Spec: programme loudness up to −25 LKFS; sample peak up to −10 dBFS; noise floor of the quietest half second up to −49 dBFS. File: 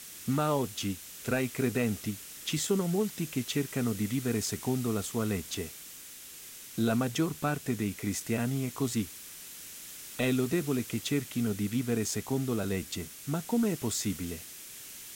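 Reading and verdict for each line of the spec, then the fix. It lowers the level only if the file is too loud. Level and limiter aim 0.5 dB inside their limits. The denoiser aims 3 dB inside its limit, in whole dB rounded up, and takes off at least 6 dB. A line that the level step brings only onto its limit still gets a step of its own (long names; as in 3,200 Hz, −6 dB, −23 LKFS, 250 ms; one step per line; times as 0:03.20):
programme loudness −31.5 LKFS: in spec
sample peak −15.5 dBFS: in spec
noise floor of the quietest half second −47 dBFS: out of spec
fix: broadband denoise 6 dB, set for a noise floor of −47 dBFS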